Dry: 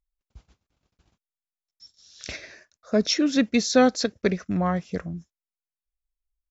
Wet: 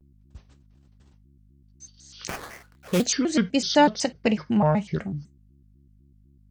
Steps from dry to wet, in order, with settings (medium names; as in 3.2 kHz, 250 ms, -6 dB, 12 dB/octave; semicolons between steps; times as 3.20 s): 3.66–4.94 s: graphic EQ with 31 bands 160 Hz +9 dB, 800 Hz +12 dB, 2.5 kHz +8 dB; in parallel at +1 dB: compression, threshold -31 dBFS, peak gain reduction 19.5 dB; on the sum: hum 60 Hz, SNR 29 dB; 2.27–3.04 s: sample-rate reducer 3.4 kHz, jitter 20%; on a send at -12 dB: reverberation, pre-delay 3 ms; on the sum: vibrato with a chosen wave square 4 Hz, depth 250 cents; trim -3.5 dB